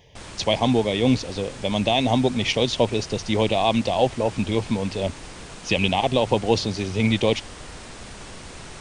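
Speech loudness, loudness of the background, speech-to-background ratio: -22.5 LUFS, -39.5 LUFS, 17.0 dB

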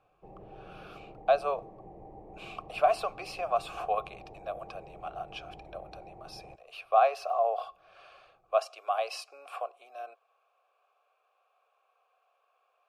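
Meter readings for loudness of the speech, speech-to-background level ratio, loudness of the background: -31.0 LUFS, 19.5 dB, -50.5 LUFS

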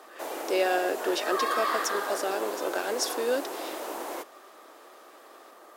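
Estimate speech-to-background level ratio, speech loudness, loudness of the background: 3.0 dB, -30.0 LUFS, -33.0 LUFS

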